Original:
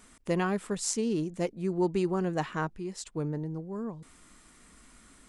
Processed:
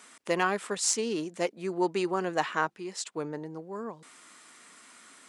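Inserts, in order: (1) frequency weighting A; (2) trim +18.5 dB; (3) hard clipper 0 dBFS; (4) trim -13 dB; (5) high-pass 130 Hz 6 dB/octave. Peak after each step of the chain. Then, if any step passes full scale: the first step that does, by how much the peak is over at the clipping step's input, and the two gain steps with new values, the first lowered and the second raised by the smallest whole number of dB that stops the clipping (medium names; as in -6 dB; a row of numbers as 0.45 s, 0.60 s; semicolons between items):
-14.0 dBFS, +4.5 dBFS, 0.0 dBFS, -13.0 dBFS, -12.5 dBFS; step 2, 4.5 dB; step 2 +13.5 dB, step 4 -8 dB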